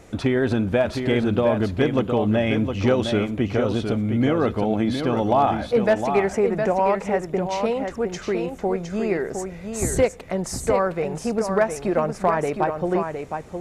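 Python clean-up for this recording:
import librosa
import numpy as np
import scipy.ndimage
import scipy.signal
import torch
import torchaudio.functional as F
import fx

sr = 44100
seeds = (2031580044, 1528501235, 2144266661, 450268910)

y = fx.fix_declip(x, sr, threshold_db=-10.0)
y = fx.fix_echo_inverse(y, sr, delay_ms=712, level_db=-6.5)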